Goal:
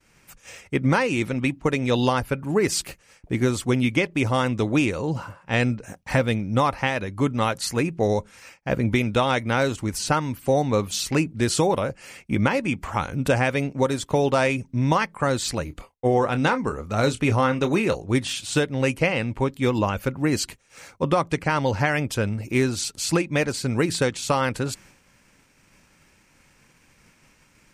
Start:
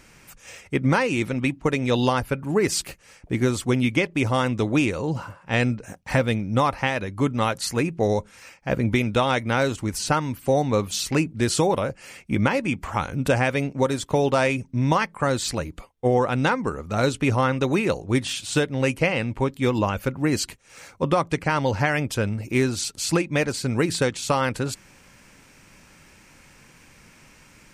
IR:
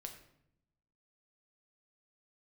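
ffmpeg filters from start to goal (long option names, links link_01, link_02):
-filter_complex "[0:a]agate=range=-33dB:threshold=-45dB:ratio=3:detection=peak,asettb=1/sr,asplit=3[link_01][link_02][link_03];[link_01]atrim=end=15.654[link_04];[link_02]atrim=start=15.65:end=17.96,asetpts=PTS-STARTPTS,afade=type=in:duration=0.004:curve=qsin,afade=type=out:start_time=2.306:duration=0.004:curve=qsin,asplit=2[link_05][link_06];[link_06]adelay=27,volume=-11dB[link_07];[link_05][link_07]amix=inputs=2:normalize=0,atrim=end_sample=101871[link_08];[link_03]atrim=start=17.956[link_09];[link_04][link_08]acrossfade=duration=0.004:curve1=hsin:curve2=qsin[link_10];[link_10][link_09]acrossfade=duration=0.004:curve1=qsin:curve2=hsin"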